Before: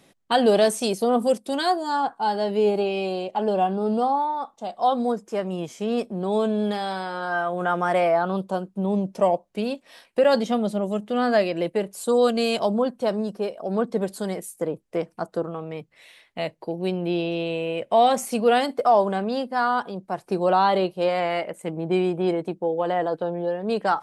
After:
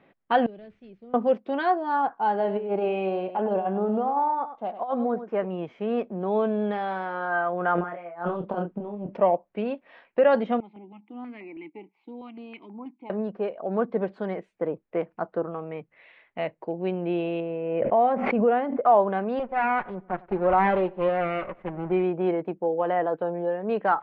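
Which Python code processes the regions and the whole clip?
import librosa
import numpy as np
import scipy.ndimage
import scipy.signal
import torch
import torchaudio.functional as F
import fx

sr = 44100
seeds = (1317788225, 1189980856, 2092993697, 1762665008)

y = fx.chain(x, sr, fx.cvsd(bps=64000),
    fx.tone_stack(knobs='10-0-1'), at=(0.46, 1.14))
y = fx.chain(y, sr, fx.high_shelf(hz=3700.0, db=-6.0),
    fx.over_compress(threshold_db=-23.0, ratio=-0.5),
    fx.echo_single(ms=99, db=-11.5), at=(2.3, 5.45))
y = fx.chain(y, sr, fx.over_compress(threshold_db=-28.0, ratio=-0.5),
    fx.doubler(ms=29.0, db=-5.0), at=(7.75, 9.17))
y = fx.chain(y, sr, fx.vowel_filter(vowel='u'),
    fx.band_shelf(hz=3500.0, db=8.0, octaves=2.4),
    fx.filter_held_notch(hz=6.2, low_hz=290.0, high_hz=3200.0), at=(10.6, 13.1))
y = fx.chain(y, sr, fx.spacing_loss(db_at_10k=43),
    fx.pre_swell(db_per_s=32.0), at=(17.4, 18.84))
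y = fx.chain(y, sr, fx.lower_of_two(delay_ms=5.4),
    fx.high_shelf(hz=3400.0, db=-7.0),
    fx.echo_filtered(ms=96, feedback_pct=41, hz=2500.0, wet_db=-23.0), at=(19.39, 22.04))
y = scipy.signal.sosfilt(scipy.signal.butter(4, 2400.0, 'lowpass', fs=sr, output='sos'), y)
y = fx.low_shelf(y, sr, hz=210.0, db=-6.5)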